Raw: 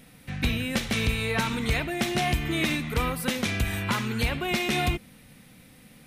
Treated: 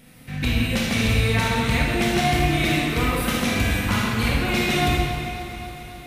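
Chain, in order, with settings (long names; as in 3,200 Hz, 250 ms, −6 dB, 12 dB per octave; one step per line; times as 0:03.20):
delay that swaps between a low-pass and a high-pass 136 ms, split 810 Hz, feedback 85%, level −13 dB
convolution reverb RT60 2.1 s, pre-delay 21 ms, DRR −3.5 dB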